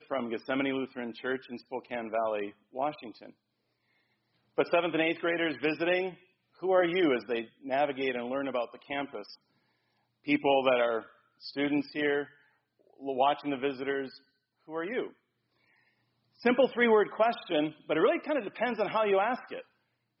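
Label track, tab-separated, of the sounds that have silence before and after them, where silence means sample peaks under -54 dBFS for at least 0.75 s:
4.570000	9.350000	sound
10.240000	15.130000	sound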